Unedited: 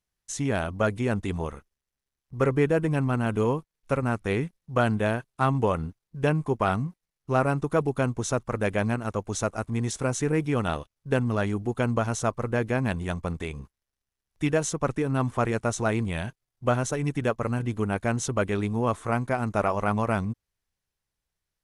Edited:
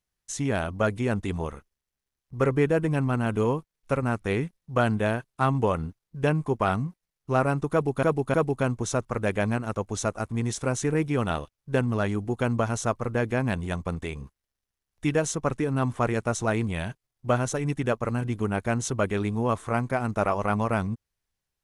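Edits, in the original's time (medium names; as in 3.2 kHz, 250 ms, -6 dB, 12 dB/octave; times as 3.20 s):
7.72–8.03 s: loop, 3 plays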